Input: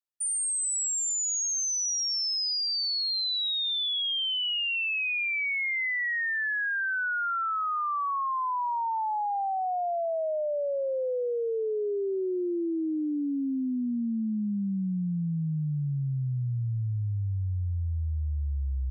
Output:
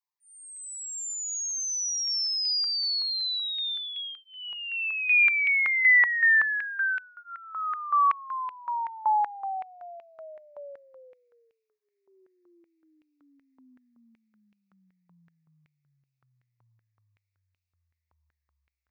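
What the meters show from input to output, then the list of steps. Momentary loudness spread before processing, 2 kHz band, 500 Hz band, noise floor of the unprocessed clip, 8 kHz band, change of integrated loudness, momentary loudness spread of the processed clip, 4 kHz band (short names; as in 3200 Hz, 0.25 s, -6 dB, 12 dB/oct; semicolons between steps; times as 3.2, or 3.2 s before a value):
5 LU, +5.5 dB, -19.5 dB, -29 dBFS, n/a, +3.5 dB, 18 LU, -1.5 dB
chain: fixed phaser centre 2100 Hz, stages 8; stepped high-pass 5.3 Hz 990–2600 Hz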